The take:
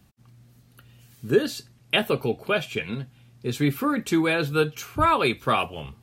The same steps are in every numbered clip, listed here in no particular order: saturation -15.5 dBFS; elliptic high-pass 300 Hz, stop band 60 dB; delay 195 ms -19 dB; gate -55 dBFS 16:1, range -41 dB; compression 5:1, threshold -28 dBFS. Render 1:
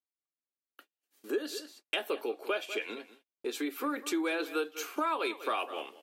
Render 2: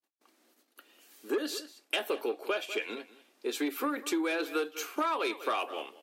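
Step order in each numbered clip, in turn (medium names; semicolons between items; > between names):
delay > compression > saturation > elliptic high-pass > gate; saturation > delay > gate > elliptic high-pass > compression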